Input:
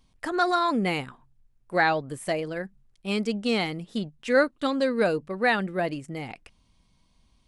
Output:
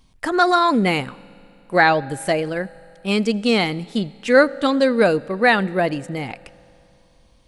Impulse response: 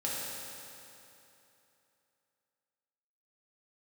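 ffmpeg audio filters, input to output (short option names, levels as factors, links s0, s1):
-filter_complex "[0:a]asplit=2[s0][s1];[1:a]atrim=start_sample=2205,adelay=82[s2];[s1][s2]afir=irnorm=-1:irlink=0,volume=0.0447[s3];[s0][s3]amix=inputs=2:normalize=0,volume=2.37"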